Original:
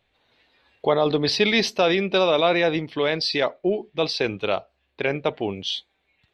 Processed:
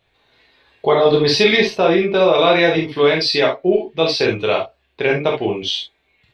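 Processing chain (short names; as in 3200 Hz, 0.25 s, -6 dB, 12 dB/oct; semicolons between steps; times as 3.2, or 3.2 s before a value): 1.56–2.35 high shelf 2700 Hz -11.5 dB; non-linear reverb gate 90 ms flat, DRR -1.5 dB; gain +3 dB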